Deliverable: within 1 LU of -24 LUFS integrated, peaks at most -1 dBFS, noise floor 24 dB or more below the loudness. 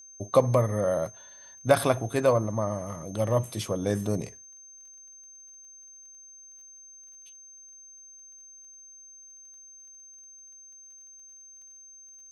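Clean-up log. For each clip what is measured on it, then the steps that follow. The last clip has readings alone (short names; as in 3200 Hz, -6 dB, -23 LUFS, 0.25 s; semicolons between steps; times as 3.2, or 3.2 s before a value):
ticks 22/s; steady tone 6300 Hz; tone level -47 dBFS; loudness -27.0 LUFS; peak -6.5 dBFS; loudness target -24.0 LUFS
-> de-click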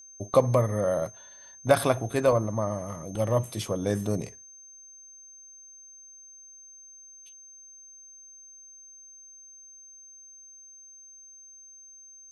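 ticks 0/s; steady tone 6300 Hz; tone level -47 dBFS
-> notch 6300 Hz, Q 30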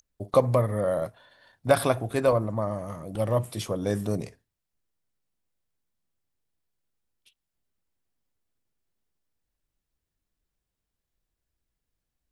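steady tone none; loudness -27.0 LUFS; peak -6.5 dBFS; loudness target -24.0 LUFS
-> gain +3 dB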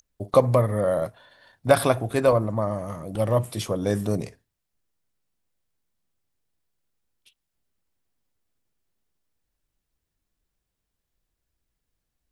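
loudness -24.0 LUFS; peak -3.5 dBFS; noise floor -82 dBFS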